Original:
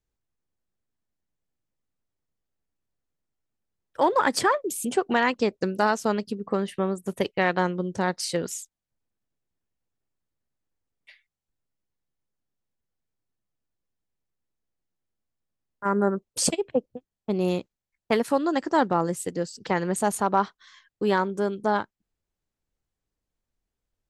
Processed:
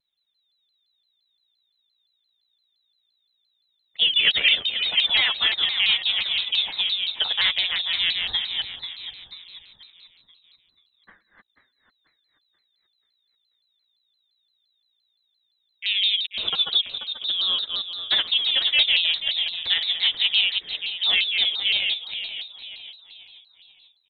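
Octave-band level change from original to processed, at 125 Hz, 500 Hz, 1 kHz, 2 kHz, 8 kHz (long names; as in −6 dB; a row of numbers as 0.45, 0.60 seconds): below −15 dB, −21.5 dB, −15.5 dB, +6.0 dB, below −35 dB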